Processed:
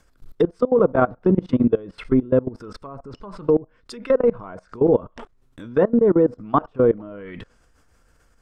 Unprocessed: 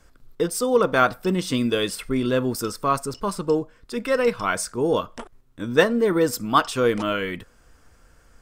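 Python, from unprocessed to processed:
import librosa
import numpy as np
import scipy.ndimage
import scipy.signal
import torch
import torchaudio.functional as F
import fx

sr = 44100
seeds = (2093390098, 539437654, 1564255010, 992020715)

y = fx.env_lowpass_down(x, sr, base_hz=680.0, full_db=-19.5)
y = fx.level_steps(y, sr, step_db=22)
y = F.gain(torch.from_numpy(y), 8.0).numpy()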